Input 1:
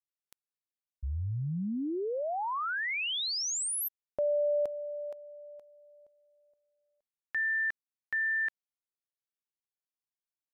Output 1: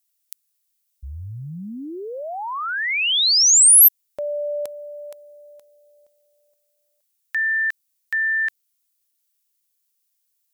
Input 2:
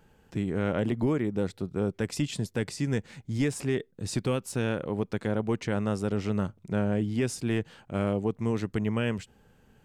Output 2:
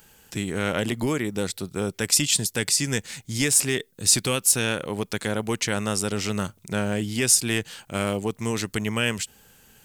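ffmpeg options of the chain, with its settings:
-af "crystalizer=i=10:c=0"

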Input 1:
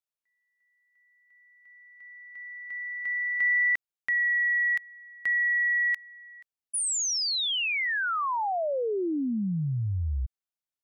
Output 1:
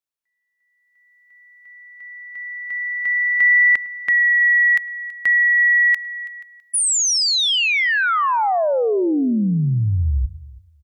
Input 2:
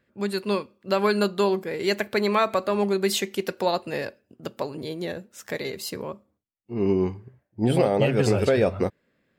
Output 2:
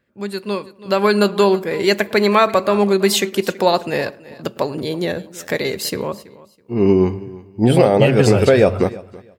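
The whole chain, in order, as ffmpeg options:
-filter_complex "[0:a]asplit=2[a][b];[b]aecho=0:1:328|656:0.106|0.0244[c];[a][c]amix=inputs=2:normalize=0,dynaudnorm=f=140:g=13:m=9dB,asplit=2[d][e];[e]adelay=106,lowpass=f=1.2k:p=1,volume=-20dB,asplit=2[f][g];[g]adelay=106,lowpass=f=1.2k:p=1,volume=0.34,asplit=2[h][i];[i]adelay=106,lowpass=f=1.2k:p=1,volume=0.34[j];[f][h][j]amix=inputs=3:normalize=0[k];[d][k]amix=inputs=2:normalize=0,volume=1dB"

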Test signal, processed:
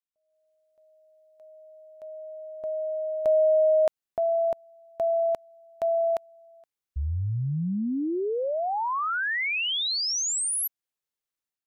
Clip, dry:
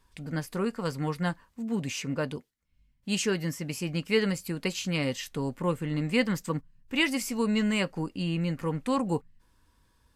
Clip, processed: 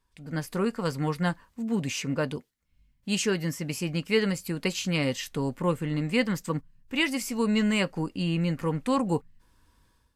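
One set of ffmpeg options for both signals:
-af "dynaudnorm=f=120:g=5:m=11.5dB,volume=-9dB"

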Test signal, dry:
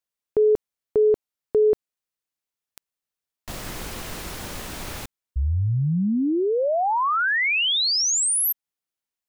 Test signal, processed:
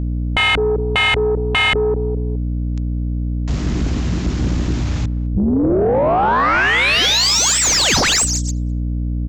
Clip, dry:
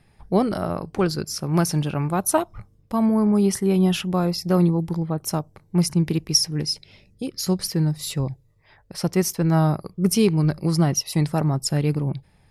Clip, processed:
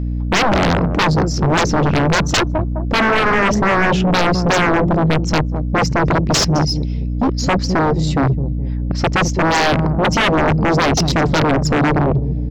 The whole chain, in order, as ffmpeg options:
-filter_complex "[0:a]highpass=52,afwtdn=0.0447,asplit=2[a][b];[b]adelay=208,lowpass=f=1.1k:p=1,volume=-18.5dB,asplit=2[c][d];[d]adelay=208,lowpass=f=1.1k:p=1,volume=0.42,asplit=2[e][f];[f]adelay=208,lowpass=f=1.1k:p=1,volume=0.42[g];[a][c][e][g]amix=inputs=4:normalize=0,aeval=exprs='val(0)+0.0112*(sin(2*PI*60*n/s)+sin(2*PI*2*60*n/s)/2+sin(2*PI*3*60*n/s)/3+sin(2*PI*4*60*n/s)/4+sin(2*PI*5*60*n/s)/5)':c=same,aresample=16000,aeval=exprs='0.473*sin(PI/2*10*val(0)/0.473)':c=same,aresample=44100,acontrast=27,volume=-8dB"

